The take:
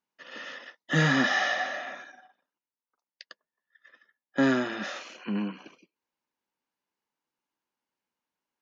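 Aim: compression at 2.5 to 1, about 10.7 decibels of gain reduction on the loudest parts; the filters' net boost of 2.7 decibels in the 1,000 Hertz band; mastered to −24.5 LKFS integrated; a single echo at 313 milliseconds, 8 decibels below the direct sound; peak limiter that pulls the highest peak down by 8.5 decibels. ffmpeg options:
ffmpeg -i in.wav -af "equalizer=frequency=1000:width_type=o:gain=4,acompressor=threshold=-35dB:ratio=2.5,alimiter=level_in=3.5dB:limit=-24dB:level=0:latency=1,volume=-3.5dB,aecho=1:1:313:0.398,volume=13.5dB" out.wav

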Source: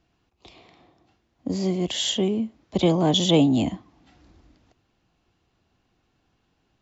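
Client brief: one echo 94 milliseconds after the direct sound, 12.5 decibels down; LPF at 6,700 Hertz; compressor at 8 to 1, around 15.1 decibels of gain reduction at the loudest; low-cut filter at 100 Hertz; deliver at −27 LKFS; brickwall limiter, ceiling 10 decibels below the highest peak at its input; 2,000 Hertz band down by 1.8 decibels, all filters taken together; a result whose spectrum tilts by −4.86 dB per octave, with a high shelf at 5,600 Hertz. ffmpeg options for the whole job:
ffmpeg -i in.wav -af "highpass=100,lowpass=6700,equalizer=frequency=2000:width_type=o:gain=-3.5,highshelf=frequency=5600:gain=6,acompressor=threshold=-30dB:ratio=8,alimiter=level_in=4dB:limit=-24dB:level=0:latency=1,volume=-4dB,aecho=1:1:94:0.237,volume=9.5dB" out.wav

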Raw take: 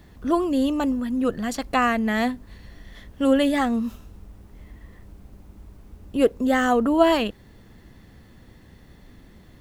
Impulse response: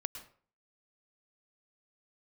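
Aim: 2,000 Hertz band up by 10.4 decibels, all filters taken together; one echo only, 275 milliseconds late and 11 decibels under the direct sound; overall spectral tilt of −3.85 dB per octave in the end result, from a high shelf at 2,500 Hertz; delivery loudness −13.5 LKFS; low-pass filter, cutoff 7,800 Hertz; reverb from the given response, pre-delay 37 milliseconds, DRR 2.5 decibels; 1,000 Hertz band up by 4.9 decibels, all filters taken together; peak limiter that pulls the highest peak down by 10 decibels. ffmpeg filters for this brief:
-filter_complex "[0:a]lowpass=7800,equalizer=frequency=1000:width_type=o:gain=3,equalizer=frequency=2000:width_type=o:gain=8,highshelf=frequency=2500:gain=8.5,alimiter=limit=-12dB:level=0:latency=1,aecho=1:1:275:0.282,asplit=2[link_01][link_02];[1:a]atrim=start_sample=2205,adelay=37[link_03];[link_02][link_03]afir=irnorm=-1:irlink=0,volume=-2dB[link_04];[link_01][link_04]amix=inputs=2:normalize=0,volume=7dB"

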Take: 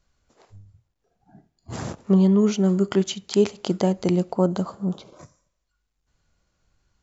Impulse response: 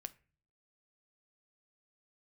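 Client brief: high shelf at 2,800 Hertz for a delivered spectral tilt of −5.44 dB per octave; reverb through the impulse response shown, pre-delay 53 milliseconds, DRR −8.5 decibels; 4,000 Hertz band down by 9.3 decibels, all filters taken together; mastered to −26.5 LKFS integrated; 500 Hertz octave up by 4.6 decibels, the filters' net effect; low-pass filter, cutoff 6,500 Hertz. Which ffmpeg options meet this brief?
-filter_complex "[0:a]lowpass=6500,equalizer=frequency=500:width_type=o:gain=6.5,highshelf=frequency=2800:gain=-5.5,equalizer=frequency=4000:width_type=o:gain=-8,asplit=2[link_01][link_02];[1:a]atrim=start_sample=2205,adelay=53[link_03];[link_02][link_03]afir=irnorm=-1:irlink=0,volume=13dB[link_04];[link_01][link_04]amix=inputs=2:normalize=0,volume=-15.5dB"

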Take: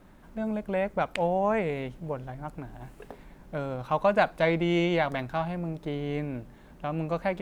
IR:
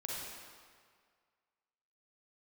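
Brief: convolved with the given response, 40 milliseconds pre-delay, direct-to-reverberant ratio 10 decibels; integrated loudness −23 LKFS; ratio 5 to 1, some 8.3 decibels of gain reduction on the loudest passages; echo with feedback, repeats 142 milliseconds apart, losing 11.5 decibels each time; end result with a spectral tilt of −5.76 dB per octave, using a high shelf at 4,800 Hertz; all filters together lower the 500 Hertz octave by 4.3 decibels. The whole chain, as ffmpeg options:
-filter_complex "[0:a]equalizer=frequency=500:width_type=o:gain=-5.5,highshelf=frequency=4800:gain=-4.5,acompressor=threshold=-30dB:ratio=5,aecho=1:1:142|284|426:0.266|0.0718|0.0194,asplit=2[link_01][link_02];[1:a]atrim=start_sample=2205,adelay=40[link_03];[link_02][link_03]afir=irnorm=-1:irlink=0,volume=-11.5dB[link_04];[link_01][link_04]amix=inputs=2:normalize=0,volume=12.5dB"

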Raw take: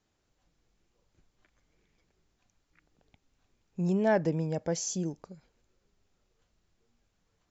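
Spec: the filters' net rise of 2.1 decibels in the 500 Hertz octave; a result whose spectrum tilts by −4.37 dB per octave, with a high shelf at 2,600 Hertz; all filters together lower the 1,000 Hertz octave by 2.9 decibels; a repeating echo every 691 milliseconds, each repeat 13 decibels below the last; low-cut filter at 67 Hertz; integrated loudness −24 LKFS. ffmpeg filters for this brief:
ffmpeg -i in.wav -af "highpass=67,equalizer=frequency=500:width_type=o:gain=5,equalizer=frequency=1000:width_type=o:gain=-8.5,highshelf=frequency=2600:gain=9,aecho=1:1:691|1382|2073:0.224|0.0493|0.0108,volume=5dB" out.wav

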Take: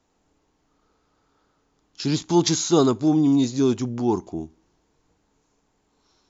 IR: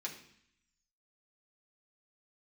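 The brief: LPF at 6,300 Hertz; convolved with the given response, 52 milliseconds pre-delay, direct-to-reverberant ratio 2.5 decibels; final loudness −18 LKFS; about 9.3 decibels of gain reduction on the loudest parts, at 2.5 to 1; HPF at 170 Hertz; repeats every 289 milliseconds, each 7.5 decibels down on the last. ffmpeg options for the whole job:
-filter_complex "[0:a]highpass=170,lowpass=6300,acompressor=threshold=-28dB:ratio=2.5,aecho=1:1:289|578|867|1156|1445:0.422|0.177|0.0744|0.0312|0.0131,asplit=2[link_01][link_02];[1:a]atrim=start_sample=2205,adelay=52[link_03];[link_02][link_03]afir=irnorm=-1:irlink=0,volume=-2.5dB[link_04];[link_01][link_04]amix=inputs=2:normalize=0,volume=9.5dB"

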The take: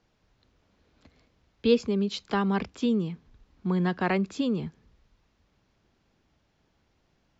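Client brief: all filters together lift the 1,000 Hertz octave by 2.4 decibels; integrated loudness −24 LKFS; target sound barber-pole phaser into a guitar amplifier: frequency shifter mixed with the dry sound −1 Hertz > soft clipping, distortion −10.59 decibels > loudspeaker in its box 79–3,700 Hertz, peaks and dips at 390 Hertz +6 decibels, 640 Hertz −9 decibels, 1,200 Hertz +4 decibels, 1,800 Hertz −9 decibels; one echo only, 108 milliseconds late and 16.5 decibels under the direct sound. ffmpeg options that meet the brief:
ffmpeg -i in.wav -filter_complex "[0:a]equalizer=frequency=1000:width_type=o:gain=3.5,aecho=1:1:108:0.15,asplit=2[link_01][link_02];[link_02]afreqshift=-1[link_03];[link_01][link_03]amix=inputs=2:normalize=1,asoftclip=threshold=-25.5dB,highpass=79,equalizer=frequency=390:width_type=q:width=4:gain=6,equalizer=frequency=640:width_type=q:width=4:gain=-9,equalizer=frequency=1200:width_type=q:width=4:gain=4,equalizer=frequency=1800:width_type=q:width=4:gain=-9,lowpass=frequency=3700:width=0.5412,lowpass=frequency=3700:width=1.3066,volume=9dB" out.wav

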